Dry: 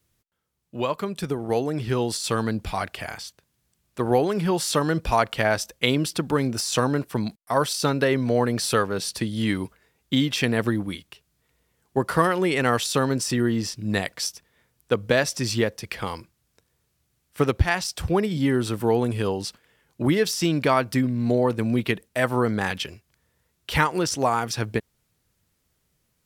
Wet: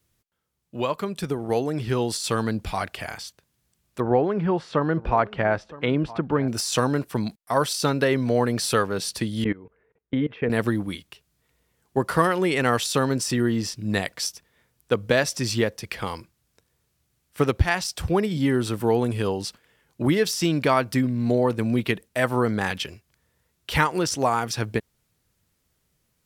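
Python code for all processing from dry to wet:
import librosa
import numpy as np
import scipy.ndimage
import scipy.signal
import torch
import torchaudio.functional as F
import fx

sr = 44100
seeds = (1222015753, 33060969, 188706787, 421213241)

y = fx.chain(x, sr, fx.lowpass(hz=1800.0, slope=12),
    fx.echo_single(ms=967, db=-19.0), at=(4.0, 6.48))
y = fx.chain(y, sr, fx.lowpass(hz=2200.0, slope=24),
    fx.peak_eq(hz=450.0, db=12.5, octaves=0.35),
    fx.level_steps(step_db=22), at=(9.44, 10.5))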